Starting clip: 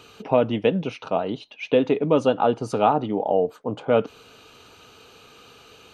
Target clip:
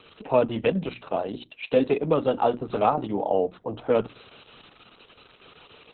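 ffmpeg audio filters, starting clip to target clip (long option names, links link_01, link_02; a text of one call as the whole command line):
ffmpeg -i in.wav -filter_complex "[0:a]bandreject=frequency=60:width_type=h:width=6,bandreject=frequency=120:width_type=h:width=6,bandreject=frequency=180:width_type=h:width=6,bandreject=frequency=240:width_type=h:width=6,bandreject=frequency=300:width_type=h:width=6,bandreject=frequency=360:width_type=h:width=6,acrossover=split=280|3300[link_01][link_02][link_03];[link_03]acrusher=bits=2:mode=log:mix=0:aa=0.000001[link_04];[link_01][link_02][link_04]amix=inputs=3:normalize=0,asettb=1/sr,asplit=3[link_05][link_06][link_07];[link_05]atrim=end=2.264[link_08];[link_06]atrim=start=2.26:end=3.04,asetpts=PTS-STARTPTS,afade=type=in:duration=0.004:curve=qsin,afade=type=out:start_time=0.776:duration=0.004:curve=qsin,adynamicequalizer=threshold=0.01:dfrequency=1100:dqfactor=6.1:tfrequency=1100:tqfactor=6.1:attack=5:release=100:ratio=0.375:range=3.5:mode=cutabove:tftype=bell[link_09];[link_07]atrim=start=3.036[link_10];[link_08][link_09]acrossfade=duration=0.004:curve1=hsin:curve2=qsin[link_11];[link_11][link_10]acrossfade=duration=0.004:curve1=qsin:curve2=hsin,volume=-1.5dB" -ar 48000 -c:a libopus -b:a 6k out.opus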